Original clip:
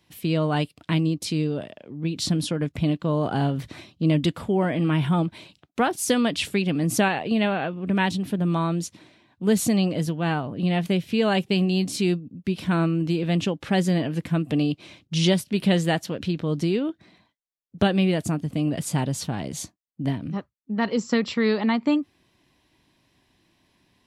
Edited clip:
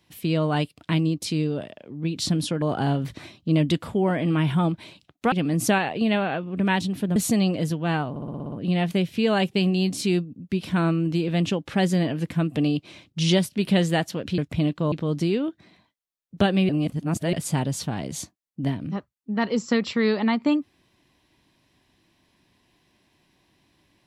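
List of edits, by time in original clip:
2.62–3.16 s: move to 16.33 s
5.86–6.62 s: delete
8.46–9.53 s: delete
10.47 s: stutter 0.06 s, 8 plays
18.10–18.74 s: reverse

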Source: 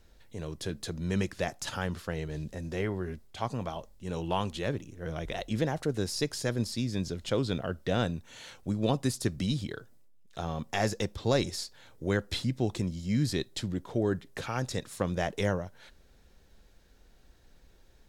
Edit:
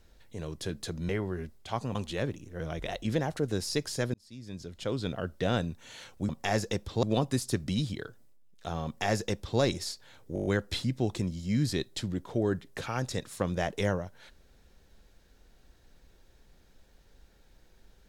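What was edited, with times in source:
1.09–2.78 s: delete
3.64–4.41 s: delete
6.60–7.77 s: fade in
10.58–11.32 s: copy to 8.75 s
12.06 s: stutter 0.02 s, 7 plays

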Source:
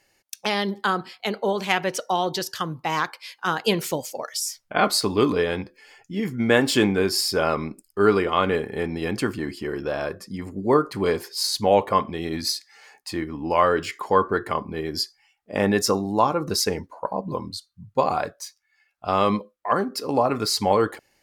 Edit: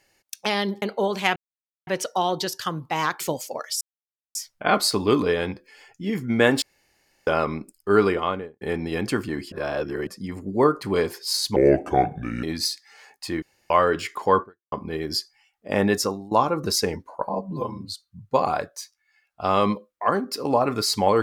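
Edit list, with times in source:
0.82–1.27 s: delete
1.81 s: insert silence 0.51 s
3.14–3.84 s: delete
4.45 s: insert silence 0.54 s
6.72–7.37 s: room tone
8.19–8.71 s: studio fade out
9.62–10.17 s: reverse
11.66–12.27 s: speed 70%
13.26–13.54 s: room tone
14.26–14.56 s: fade out exponential
15.74–16.15 s: fade out, to -18 dB
17.13–17.53 s: stretch 1.5×

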